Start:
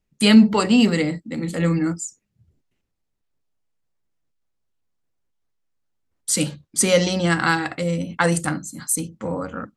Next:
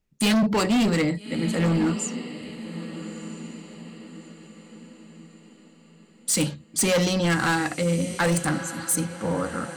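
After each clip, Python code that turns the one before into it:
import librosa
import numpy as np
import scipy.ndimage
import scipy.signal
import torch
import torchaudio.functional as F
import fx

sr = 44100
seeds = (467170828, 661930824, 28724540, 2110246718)

y = fx.echo_diffused(x, sr, ms=1279, feedback_pct=42, wet_db=-15)
y = np.clip(y, -10.0 ** (-18.0 / 20.0), 10.0 ** (-18.0 / 20.0))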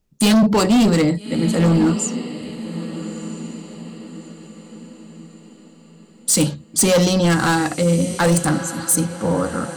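y = fx.peak_eq(x, sr, hz=2100.0, db=-6.5, octaves=1.1)
y = y * librosa.db_to_amplitude(7.0)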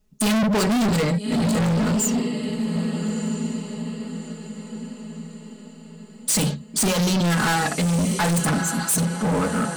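y = x + 0.98 * np.pad(x, (int(4.7 * sr / 1000.0), 0))[:len(x)]
y = np.clip(10.0 ** (18.5 / 20.0) * y, -1.0, 1.0) / 10.0 ** (18.5 / 20.0)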